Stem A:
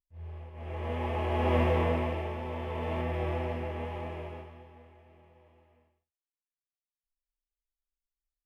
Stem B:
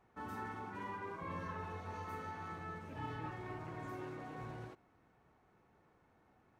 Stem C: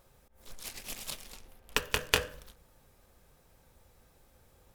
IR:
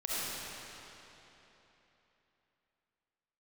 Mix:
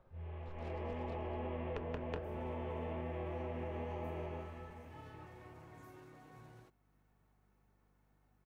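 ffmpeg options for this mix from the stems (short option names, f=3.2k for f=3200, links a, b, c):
-filter_complex "[0:a]lowpass=f=3.5k:w=0.5412,lowpass=f=3.5k:w=1.3066,acompressor=threshold=-34dB:ratio=4,volume=0dB[a];[1:a]aeval=exprs='val(0)+0.000631*(sin(2*PI*50*n/s)+sin(2*PI*2*50*n/s)/2+sin(2*PI*3*50*n/s)/3+sin(2*PI*4*50*n/s)/4+sin(2*PI*5*50*n/s)/5)':c=same,acompressor=mode=upward:threshold=-56dB:ratio=2.5,aemphasis=mode=production:type=50kf,adelay=1950,volume=-11.5dB[b];[2:a]lowpass=1.5k,volume=-2dB[c];[a][b][c]amix=inputs=3:normalize=0,equalizer=f=140:w=1.5:g=2.5,acrossover=split=160|800[d][e][f];[d]acompressor=threshold=-46dB:ratio=4[g];[e]acompressor=threshold=-41dB:ratio=4[h];[f]acompressor=threshold=-53dB:ratio=4[i];[g][h][i]amix=inputs=3:normalize=0"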